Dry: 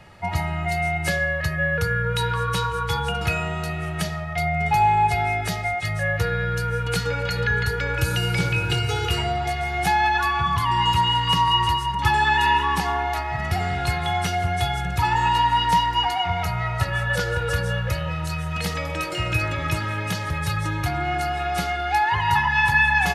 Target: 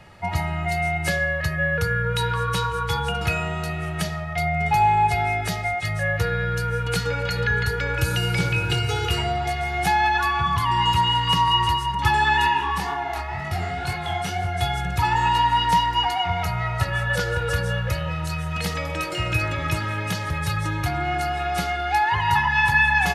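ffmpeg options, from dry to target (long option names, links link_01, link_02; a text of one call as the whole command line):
ffmpeg -i in.wav -filter_complex "[0:a]asplit=3[link_01][link_02][link_03];[link_01]afade=type=out:start_time=12.47:duration=0.02[link_04];[link_02]flanger=delay=20:depth=6.8:speed=2,afade=type=in:start_time=12.47:duration=0.02,afade=type=out:start_time=14.6:duration=0.02[link_05];[link_03]afade=type=in:start_time=14.6:duration=0.02[link_06];[link_04][link_05][link_06]amix=inputs=3:normalize=0" out.wav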